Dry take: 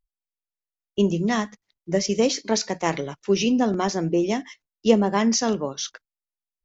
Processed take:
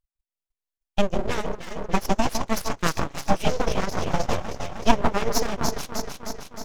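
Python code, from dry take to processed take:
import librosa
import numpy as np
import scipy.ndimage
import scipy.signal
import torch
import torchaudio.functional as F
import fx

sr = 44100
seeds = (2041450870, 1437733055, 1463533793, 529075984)

y = fx.echo_alternate(x, sr, ms=155, hz=950.0, feedback_pct=80, wet_db=-3.0)
y = np.abs(y)
y = fx.transient(y, sr, attack_db=7, sustain_db=-12)
y = F.gain(torch.from_numpy(y), -3.0).numpy()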